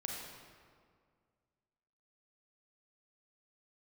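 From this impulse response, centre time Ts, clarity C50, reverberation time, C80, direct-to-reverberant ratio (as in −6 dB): 88 ms, 0.5 dB, 2.0 s, 2.0 dB, −1.5 dB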